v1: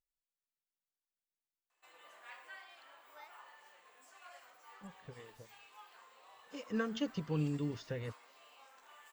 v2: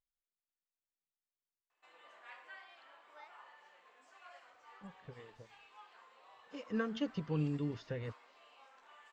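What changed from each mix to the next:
master: add air absorption 110 m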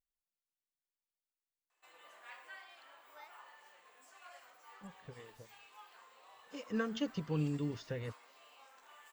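master: remove air absorption 110 m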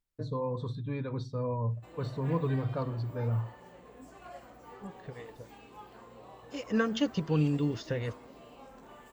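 first voice: unmuted; second voice +7.5 dB; background: remove HPF 1300 Hz 12 dB/oct

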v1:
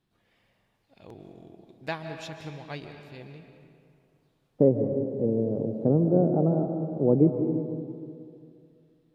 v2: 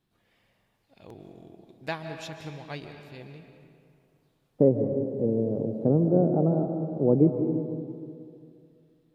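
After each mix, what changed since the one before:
first voice: add high shelf 10000 Hz +6 dB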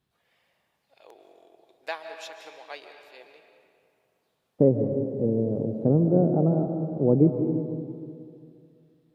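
first voice: add HPF 470 Hz 24 dB/oct; master: add low shelf 150 Hz +4.5 dB

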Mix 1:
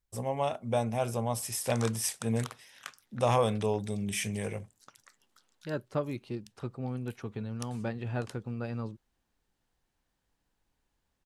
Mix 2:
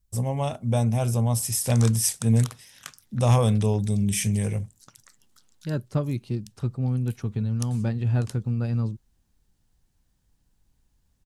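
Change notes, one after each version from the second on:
master: add tone controls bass +14 dB, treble +9 dB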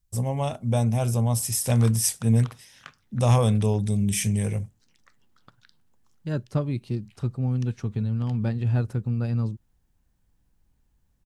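second voice: entry +0.60 s; background: add LPF 2700 Hz 12 dB/oct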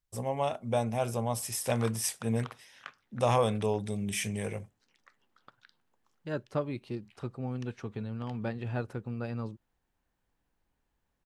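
master: add tone controls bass -14 dB, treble -9 dB

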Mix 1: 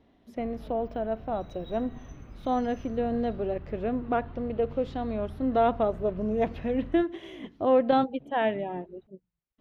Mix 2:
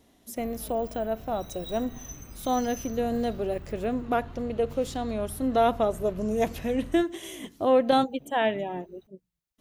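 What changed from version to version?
master: remove air absorption 320 m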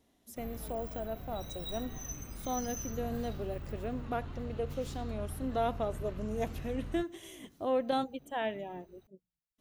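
speech -9.5 dB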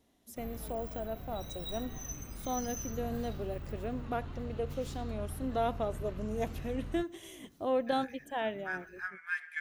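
second voice: unmuted

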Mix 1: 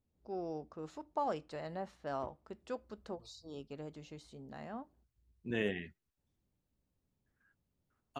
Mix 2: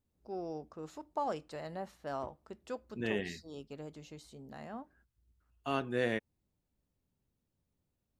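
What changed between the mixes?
first voice: remove air absorption 52 m; second voice: entry -2.50 s

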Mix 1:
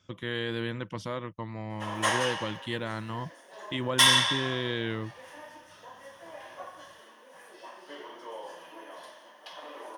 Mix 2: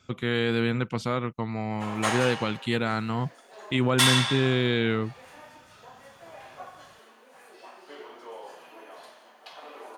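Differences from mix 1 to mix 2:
speech +6.5 dB; master: remove ripple EQ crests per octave 1.2, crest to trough 8 dB

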